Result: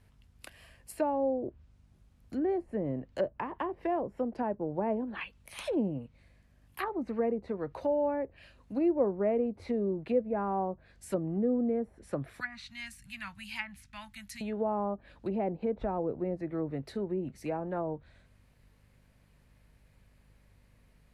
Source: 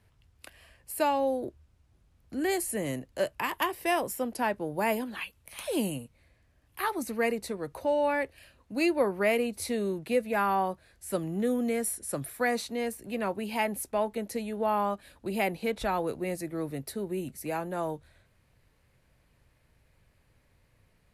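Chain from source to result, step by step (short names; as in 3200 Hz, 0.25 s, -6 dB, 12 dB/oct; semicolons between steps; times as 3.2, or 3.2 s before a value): 12.4–14.41 Chebyshev band-stop 110–1800 Hz, order 2; treble ducked by the level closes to 650 Hz, closed at -27.5 dBFS; hum 50 Hz, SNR 30 dB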